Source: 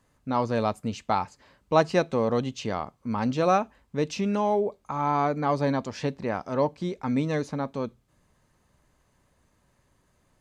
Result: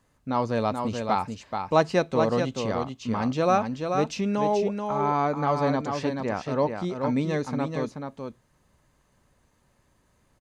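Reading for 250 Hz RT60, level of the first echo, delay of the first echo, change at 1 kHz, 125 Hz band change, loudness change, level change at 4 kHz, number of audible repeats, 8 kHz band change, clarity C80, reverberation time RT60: no reverb, -5.5 dB, 432 ms, +1.0 dB, +1.0 dB, +1.0 dB, +1.0 dB, 1, +1.0 dB, no reverb, no reverb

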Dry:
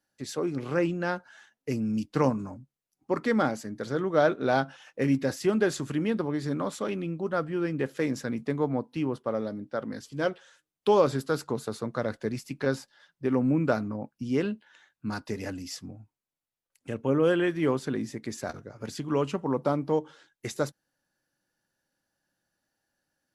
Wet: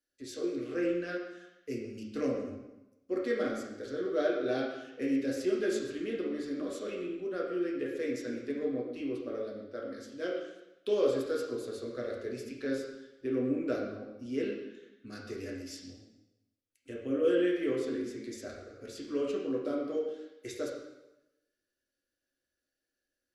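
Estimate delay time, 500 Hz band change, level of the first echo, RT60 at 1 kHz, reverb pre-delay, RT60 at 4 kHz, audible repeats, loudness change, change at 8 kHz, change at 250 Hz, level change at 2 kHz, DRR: no echo, -4.0 dB, no echo, 0.95 s, 4 ms, 0.85 s, no echo, -5.5 dB, -7.0 dB, -5.5 dB, -7.5 dB, -3.0 dB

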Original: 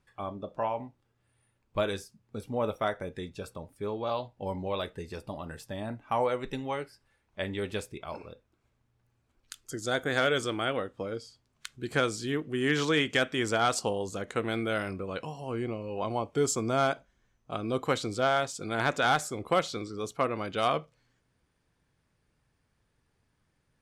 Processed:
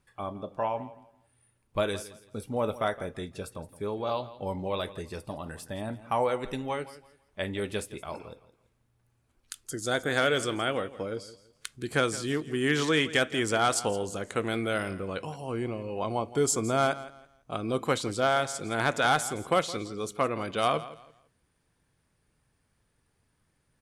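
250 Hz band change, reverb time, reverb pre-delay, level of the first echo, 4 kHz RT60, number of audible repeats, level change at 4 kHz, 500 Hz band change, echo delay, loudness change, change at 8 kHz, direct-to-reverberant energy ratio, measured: +1.0 dB, no reverb, no reverb, -16.5 dB, no reverb, 2, +1.5 dB, +1.0 dB, 167 ms, +1.0 dB, +4.0 dB, no reverb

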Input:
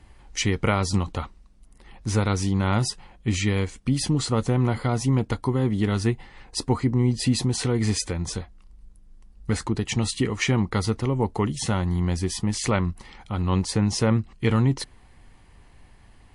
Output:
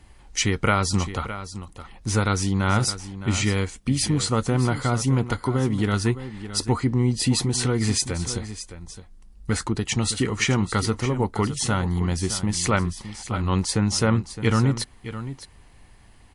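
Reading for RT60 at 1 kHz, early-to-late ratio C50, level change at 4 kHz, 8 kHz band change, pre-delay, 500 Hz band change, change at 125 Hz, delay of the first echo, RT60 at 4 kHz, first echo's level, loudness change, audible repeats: no reverb, no reverb, +3.0 dB, +4.5 dB, no reverb, +0.5 dB, +0.5 dB, 614 ms, no reverb, -12.5 dB, +1.0 dB, 1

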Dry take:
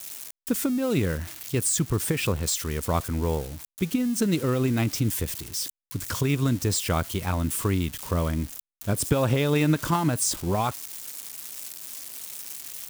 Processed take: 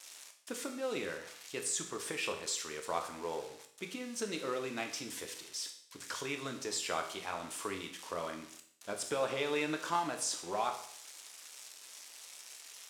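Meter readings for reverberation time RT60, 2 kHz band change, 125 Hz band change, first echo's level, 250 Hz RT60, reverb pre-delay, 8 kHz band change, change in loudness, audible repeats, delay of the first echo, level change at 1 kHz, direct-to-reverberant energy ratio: 0.60 s, -6.0 dB, -28.0 dB, no echo, 0.60 s, 8 ms, -10.0 dB, -11.5 dB, no echo, no echo, -6.5 dB, 4.0 dB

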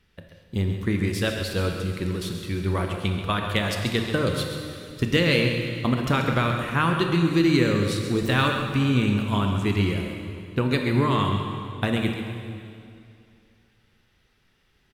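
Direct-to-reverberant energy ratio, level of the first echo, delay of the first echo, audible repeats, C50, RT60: 2.5 dB, -9.5 dB, 134 ms, 1, 3.0 dB, 2.5 s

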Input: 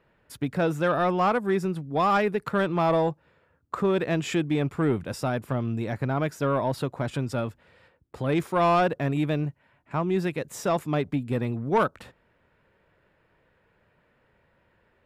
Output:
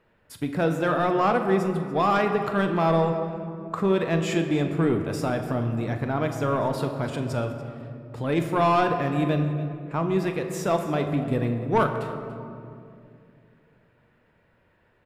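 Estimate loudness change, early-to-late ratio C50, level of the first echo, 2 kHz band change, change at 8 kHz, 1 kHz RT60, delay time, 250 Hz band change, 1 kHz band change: +1.5 dB, 7.0 dB, -13.0 dB, +1.0 dB, +0.5 dB, 2.2 s, 42 ms, +2.0 dB, +1.5 dB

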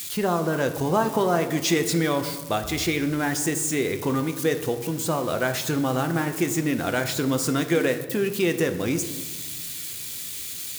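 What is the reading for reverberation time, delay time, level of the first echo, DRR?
1.4 s, no echo, no echo, 7.0 dB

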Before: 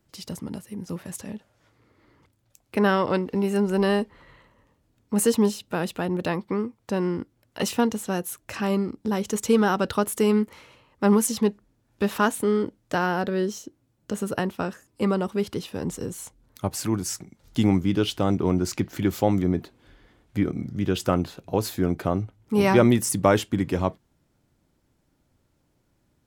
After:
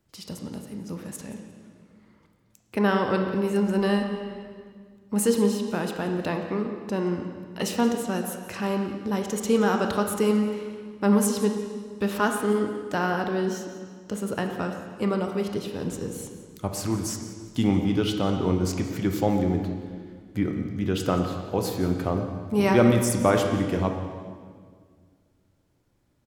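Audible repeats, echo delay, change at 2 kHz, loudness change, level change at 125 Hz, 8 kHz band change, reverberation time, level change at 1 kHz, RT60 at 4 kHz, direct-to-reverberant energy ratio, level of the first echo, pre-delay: 1, 176 ms, -1.0 dB, -1.0 dB, -0.5 dB, -2.0 dB, 1.8 s, -1.0 dB, 1.6 s, 3.5 dB, -16.0 dB, 21 ms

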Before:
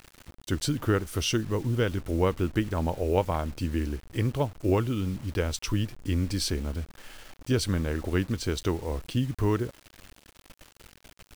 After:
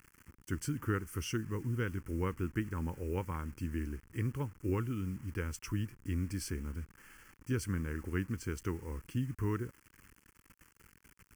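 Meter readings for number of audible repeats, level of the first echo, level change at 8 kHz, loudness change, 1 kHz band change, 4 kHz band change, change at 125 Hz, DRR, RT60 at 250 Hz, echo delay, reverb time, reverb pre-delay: no echo, no echo, -9.5 dB, -9.0 dB, -10.5 dB, -16.0 dB, -7.5 dB, no reverb, no reverb, no echo, no reverb, no reverb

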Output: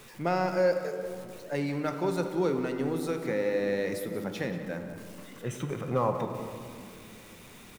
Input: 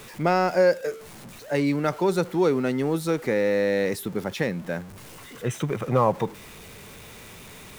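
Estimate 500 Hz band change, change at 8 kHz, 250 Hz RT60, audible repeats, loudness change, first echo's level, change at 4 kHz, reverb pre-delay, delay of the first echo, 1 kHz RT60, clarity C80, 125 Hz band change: -6.0 dB, -7.0 dB, 4.5 s, 1, -6.0 dB, -13.5 dB, -7.0 dB, 3 ms, 183 ms, 2.1 s, 7.5 dB, -6.0 dB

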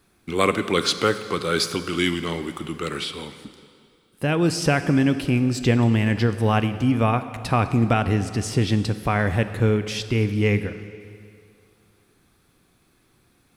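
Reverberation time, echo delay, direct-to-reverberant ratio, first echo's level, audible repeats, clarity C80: 2.4 s, no echo, 10.5 dB, no echo, no echo, 12.5 dB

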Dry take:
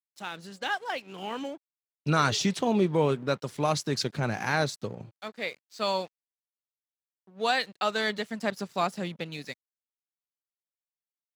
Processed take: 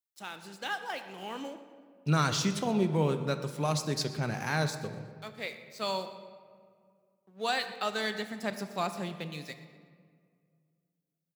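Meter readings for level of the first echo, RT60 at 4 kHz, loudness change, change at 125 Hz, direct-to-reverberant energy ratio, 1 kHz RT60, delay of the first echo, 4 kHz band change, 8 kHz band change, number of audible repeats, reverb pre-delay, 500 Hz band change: -18.5 dB, 1.1 s, -3.5 dB, 0.0 dB, 8.5 dB, 1.9 s, 121 ms, -3.0 dB, -1.5 dB, 1, 3 ms, -4.5 dB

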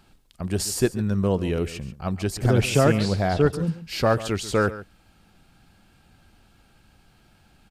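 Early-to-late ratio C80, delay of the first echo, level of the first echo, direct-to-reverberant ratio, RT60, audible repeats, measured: no reverb, 139 ms, -15.5 dB, no reverb, no reverb, 1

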